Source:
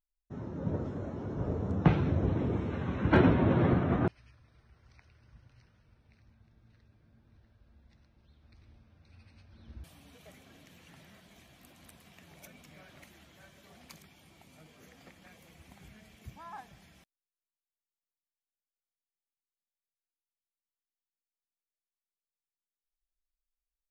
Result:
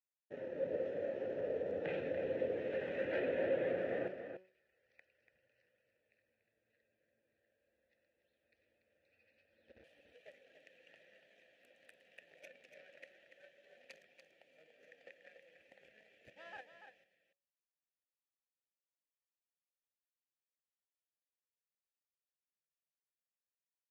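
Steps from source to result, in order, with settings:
low-shelf EQ 290 Hz −7.5 dB
hum removal 186.9 Hz, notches 7
leveller curve on the samples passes 2
in parallel at +1.5 dB: downward compressor, threshold −37 dBFS, peak gain reduction 17.5 dB
on the sum: brickwall limiter −19.5 dBFS, peak gain reduction 8 dB
formant filter e
on a send: single-tap delay 288 ms −8.5 dB
on the sum: level +1 dB

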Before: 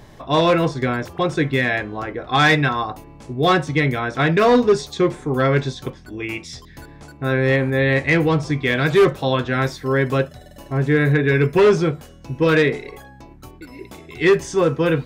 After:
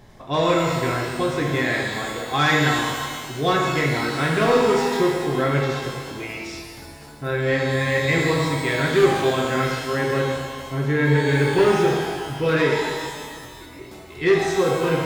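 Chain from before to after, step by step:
reverb with rising layers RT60 1.7 s, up +12 semitones, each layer −8 dB, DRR −1 dB
level −6 dB

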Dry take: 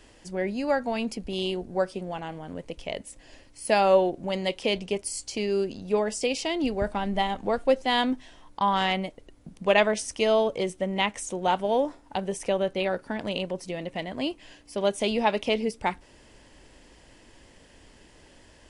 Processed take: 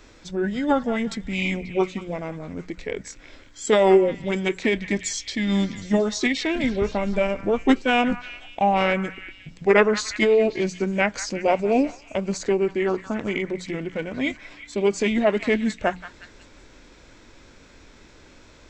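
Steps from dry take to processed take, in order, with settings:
formants moved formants −5 semitones
mains-hum notches 60/120/180 Hz
echo through a band-pass that steps 179 ms, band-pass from 1,400 Hz, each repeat 0.7 octaves, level −10 dB
level +4.5 dB

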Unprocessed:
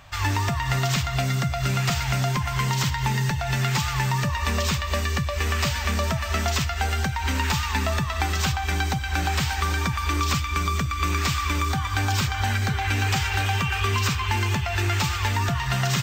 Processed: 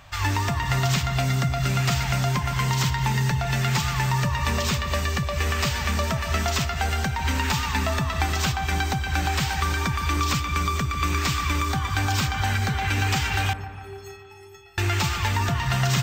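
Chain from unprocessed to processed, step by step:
0:13.53–0:14.78: stiff-string resonator 390 Hz, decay 0.67 s, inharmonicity 0.03
on a send: delay with a low-pass on its return 146 ms, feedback 63%, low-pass 1,300 Hz, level −10.5 dB

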